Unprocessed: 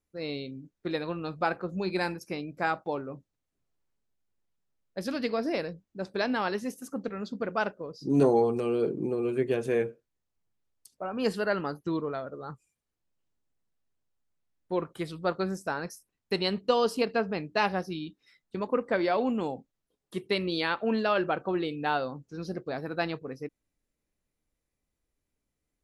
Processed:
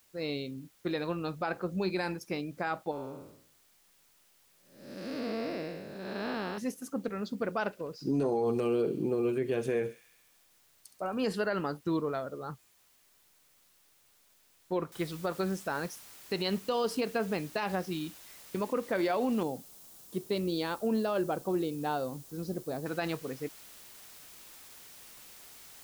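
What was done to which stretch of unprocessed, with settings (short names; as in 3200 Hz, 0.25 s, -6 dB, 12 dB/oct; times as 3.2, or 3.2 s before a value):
2.91–6.58 time blur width 0.365 s
7.65–11.22 thin delay 68 ms, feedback 73%, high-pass 3400 Hz, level -11 dB
14.92 noise floor step -66 dB -52 dB
19.43–22.86 bell 2100 Hz -12 dB 1.9 oct
whole clip: limiter -21.5 dBFS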